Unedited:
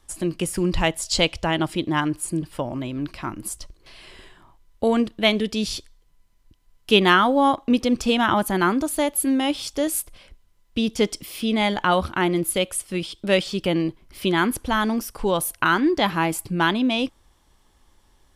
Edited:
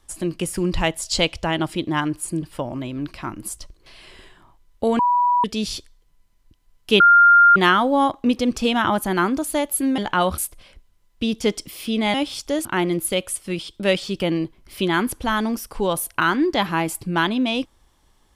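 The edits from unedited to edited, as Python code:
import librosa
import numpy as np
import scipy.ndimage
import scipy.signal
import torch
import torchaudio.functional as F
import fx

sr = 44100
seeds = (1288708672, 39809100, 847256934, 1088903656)

y = fx.edit(x, sr, fx.bleep(start_s=4.99, length_s=0.45, hz=977.0, db=-14.5),
    fx.insert_tone(at_s=7.0, length_s=0.56, hz=1400.0, db=-8.0),
    fx.swap(start_s=9.42, length_s=0.51, other_s=11.69, other_length_s=0.4), tone=tone)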